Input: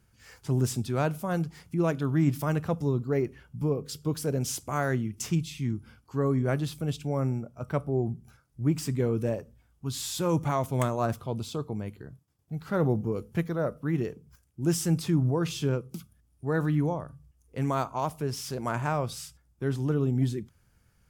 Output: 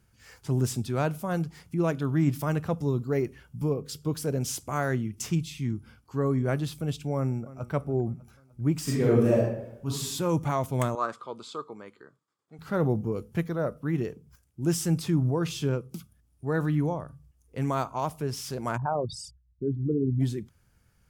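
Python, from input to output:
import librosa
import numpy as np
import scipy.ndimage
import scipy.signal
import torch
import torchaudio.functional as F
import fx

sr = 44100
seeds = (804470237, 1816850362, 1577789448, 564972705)

y = fx.high_shelf(x, sr, hz=4100.0, db=5.5, at=(2.88, 3.74))
y = fx.echo_throw(y, sr, start_s=7.16, length_s=0.54, ms=300, feedback_pct=55, wet_db=-17.0)
y = fx.reverb_throw(y, sr, start_s=8.83, length_s=1.04, rt60_s=0.83, drr_db=-6.0)
y = fx.cabinet(y, sr, low_hz=430.0, low_slope=12, high_hz=7600.0, hz=(700.0, 1200.0, 2700.0, 5800.0), db=(-8, 9, -6, -8), at=(10.95, 12.59))
y = fx.envelope_sharpen(y, sr, power=3.0, at=(18.76, 20.19), fade=0.02)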